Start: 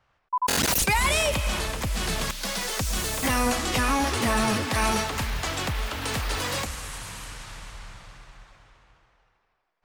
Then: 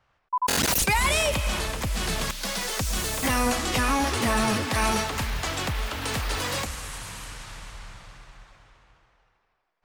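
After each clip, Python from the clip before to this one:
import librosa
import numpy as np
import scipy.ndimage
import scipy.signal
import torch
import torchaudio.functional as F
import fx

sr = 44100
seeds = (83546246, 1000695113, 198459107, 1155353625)

y = x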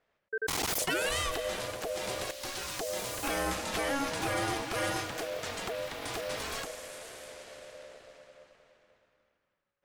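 y = x * np.sin(2.0 * np.pi * 560.0 * np.arange(len(x)) / sr)
y = y * 10.0 ** (-5.5 / 20.0)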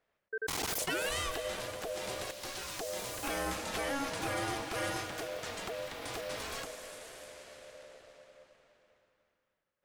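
y = fx.echo_feedback(x, sr, ms=294, feedback_pct=46, wet_db=-15.0)
y = y * 10.0 ** (-3.5 / 20.0)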